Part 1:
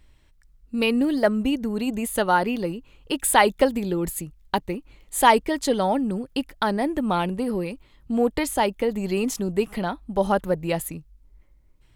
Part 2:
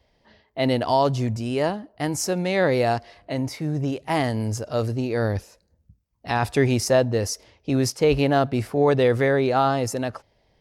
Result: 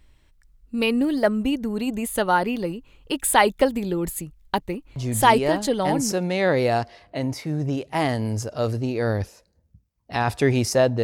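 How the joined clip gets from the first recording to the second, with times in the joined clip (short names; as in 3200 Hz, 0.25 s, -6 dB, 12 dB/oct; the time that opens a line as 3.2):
part 1
5.54 switch to part 2 from 1.69 s, crossfade 1.16 s logarithmic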